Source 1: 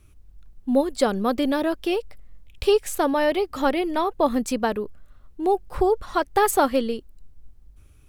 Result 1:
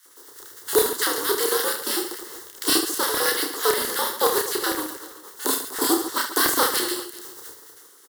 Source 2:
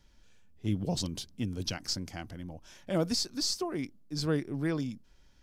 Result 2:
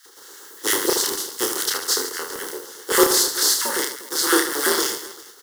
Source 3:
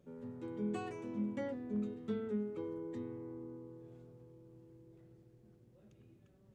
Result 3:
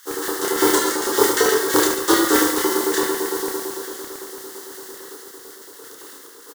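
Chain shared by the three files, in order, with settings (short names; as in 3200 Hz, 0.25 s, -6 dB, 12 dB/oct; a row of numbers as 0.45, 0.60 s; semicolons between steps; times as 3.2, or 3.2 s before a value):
spectral contrast lowered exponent 0.38; frequency shift -110 Hz; fixed phaser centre 650 Hz, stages 6; LFO high-pass square 8.9 Hz 400–1900 Hz; reverse bouncing-ball echo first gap 30 ms, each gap 1.5×, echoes 5; normalise peaks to -2 dBFS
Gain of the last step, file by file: -0.5, +12.5, +23.0 dB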